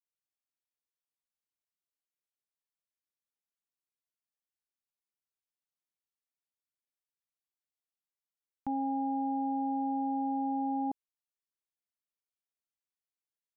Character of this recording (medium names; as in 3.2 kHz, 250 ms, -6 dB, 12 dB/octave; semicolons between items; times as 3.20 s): noise floor -96 dBFS; spectral tilt +5.5 dB/octave